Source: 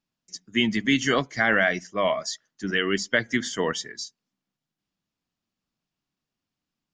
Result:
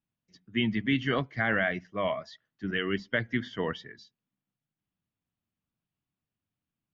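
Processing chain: low-pass 3.5 kHz 24 dB/octave; peaking EQ 97 Hz +10.5 dB 1.4 oct; trim -6.5 dB

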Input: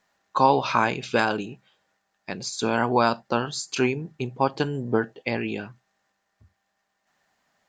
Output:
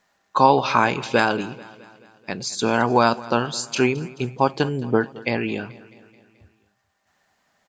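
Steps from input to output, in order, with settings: feedback delay 216 ms, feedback 58%, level -20 dB; trim +3.5 dB

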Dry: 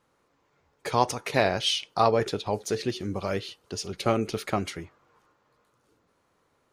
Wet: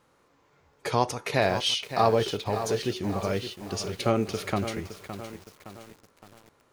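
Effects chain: harmonic-percussive split percussive -5 dB; in parallel at +2 dB: compression 6:1, threshold -38 dBFS, peak gain reduction 18.5 dB; on the sum: bit-crushed delay 565 ms, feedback 55%, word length 7-bit, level -10 dB

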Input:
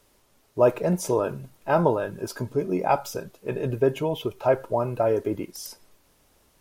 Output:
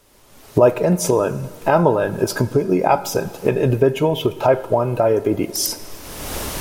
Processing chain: recorder AGC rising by 30 dB/s; plate-style reverb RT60 2.3 s, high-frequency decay 0.9×, DRR 16 dB; trim +5.5 dB

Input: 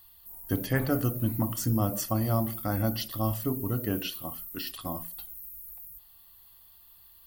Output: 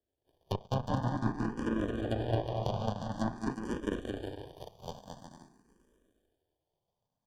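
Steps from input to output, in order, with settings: Chebyshev shaper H 7 -17 dB, 8 -37 dB, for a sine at -12.5 dBFS; treble shelf 5.4 kHz +7.5 dB; in parallel at 0 dB: compression, threshold -35 dBFS, peak gain reduction 14.5 dB; on the sum: sample-and-hold 33×; low-pass that closes with the level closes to 1.9 kHz, closed at -21 dBFS; Butterworth band-stop 2.1 kHz, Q 2.7; on a send: bouncing-ball echo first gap 220 ms, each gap 0.65×, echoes 5; on the sum: barber-pole phaser +0.48 Hz; trim -4.5 dB

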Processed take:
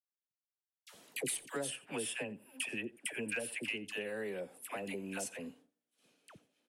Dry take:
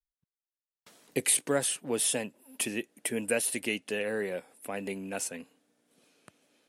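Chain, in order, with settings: 1.70–3.85 s: graphic EQ with 31 bands 100 Hz +5 dB, 1.6 kHz +6 dB, 2.5 kHz +7 dB, 4 kHz -7 dB, 6.3 kHz -10 dB, 12.5 kHz -11 dB; one-sided clip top -17.5 dBFS; peaking EQ 3 kHz +3.5 dB 0.46 oct; delay 86 ms -22.5 dB; expander -59 dBFS; phase dispersion lows, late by 79 ms, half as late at 850 Hz; compression 3:1, threshold -39 dBFS, peak gain reduction 13.5 dB

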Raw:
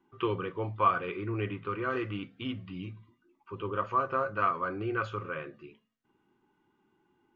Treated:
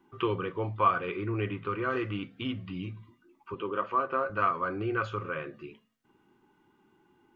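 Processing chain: 3.54–4.30 s: Chebyshev band-pass 230–3500 Hz, order 2; in parallel at -0.5 dB: compression, threshold -44 dBFS, peak gain reduction 22.5 dB

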